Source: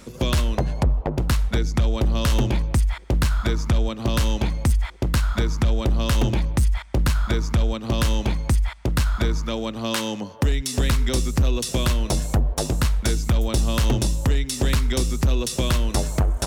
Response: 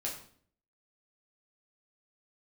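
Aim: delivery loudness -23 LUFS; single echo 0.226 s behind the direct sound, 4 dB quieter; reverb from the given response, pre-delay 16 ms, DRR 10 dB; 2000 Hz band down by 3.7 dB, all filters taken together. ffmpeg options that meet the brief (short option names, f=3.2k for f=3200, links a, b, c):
-filter_complex "[0:a]equalizer=f=2k:t=o:g=-5,aecho=1:1:226:0.631,asplit=2[a][b];[1:a]atrim=start_sample=2205,adelay=16[c];[b][c]afir=irnorm=-1:irlink=0,volume=-11.5dB[d];[a][d]amix=inputs=2:normalize=0,volume=-3.5dB"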